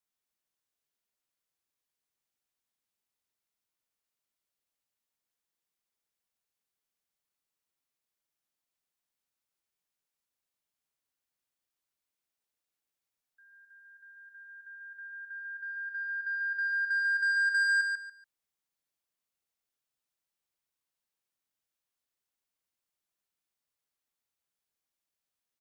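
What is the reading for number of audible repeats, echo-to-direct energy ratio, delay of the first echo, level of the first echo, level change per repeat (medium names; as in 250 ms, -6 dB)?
3, -4.5 dB, 143 ms, -5.0 dB, -12.5 dB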